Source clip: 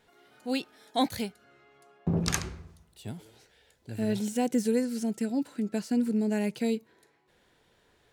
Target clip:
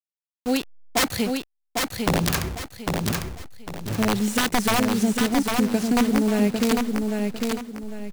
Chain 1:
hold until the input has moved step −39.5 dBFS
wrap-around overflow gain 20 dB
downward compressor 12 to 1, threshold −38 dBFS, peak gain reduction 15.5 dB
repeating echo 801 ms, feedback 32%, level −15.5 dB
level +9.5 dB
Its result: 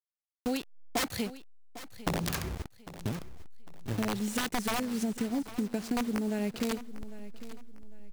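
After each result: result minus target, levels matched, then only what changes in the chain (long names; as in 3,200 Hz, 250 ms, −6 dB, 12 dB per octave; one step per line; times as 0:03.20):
downward compressor: peak gain reduction +10 dB; echo-to-direct −11.5 dB
change: downward compressor 12 to 1, threshold −27 dBFS, peak gain reduction 5.5 dB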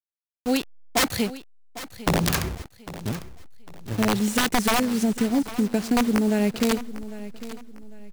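echo-to-direct −11.5 dB
change: repeating echo 801 ms, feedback 32%, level −4 dB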